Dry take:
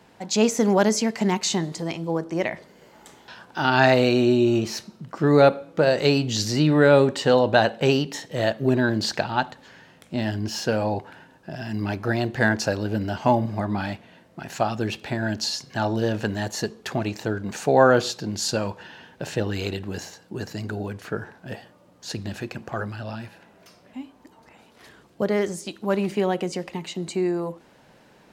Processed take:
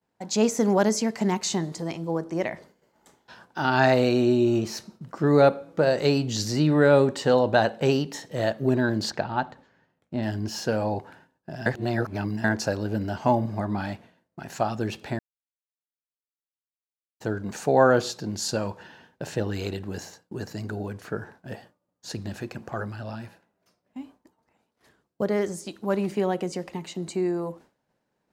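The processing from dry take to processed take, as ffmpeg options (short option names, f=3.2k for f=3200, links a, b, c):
-filter_complex "[0:a]asettb=1/sr,asplit=3[a][b][c];[a]atrim=end=9.104[d];[b]atrim=start=9.1:end=10.23,asetpts=PTS-STARTPTS,afade=t=in:d=0.004:c=qsin,afade=t=out:st=1.126:d=0.004:c=qsin,lowpass=f=2.3k:p=1[e];[c]atrim=start=10.226[f];[d][e]acrossfade=d=0.004:c1=hsin:c2=qsin[g];[g][f]acrossfade=d=0.004:c1=qsin:c2=hsin,asplit=5[h][i][j][k][l];[h]atrim=end=11.662[m];[i]atrim=start=11.658:end=12.442,asetpts=PTS-STARTPTS,areverse[n];[j]atrim=start=12.438:end=15.19,asetpts=PTS-STARTPTS,afade=t=out:st=2.748:d=0.004:c=hsin[o];[k]atrim=start=15.19:end=17.2,asetpts=PTS-STARTPTS,volume=0[p];[l]atrim=start=17.2,asetpts=PTS-STARTPTS,afade=t=in:d=0.004:c=hsin[q];[m][n]acrossfade=d=0.004:c1=hsin:c2=hsin[r];[o][p][q]concat=n=3:v=0:a=1[s];[r][s]acrossfade=d=0.004:c1=hsin:c2=hsin,agate=range=-33dB:threshold=-41dB:ratio=3:detection=peak,equalizer=f=2.9k:w=1.1:g=-4.5,volume=-2dB"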